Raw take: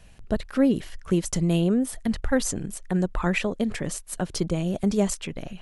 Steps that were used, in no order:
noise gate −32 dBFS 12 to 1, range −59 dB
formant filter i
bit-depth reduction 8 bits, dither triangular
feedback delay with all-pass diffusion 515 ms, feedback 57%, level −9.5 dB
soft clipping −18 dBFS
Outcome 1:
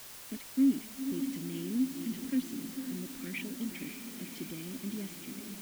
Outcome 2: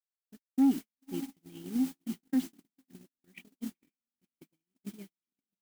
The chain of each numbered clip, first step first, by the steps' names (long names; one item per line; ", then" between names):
noise gate, then feedback delay with all-pass diffusion, then soft clipping, then formant filter, then bit-depth reduction
formant filter, then bit-depth reduction, then soft clipping, then feedback delay with all-pass diffusion, then noise gate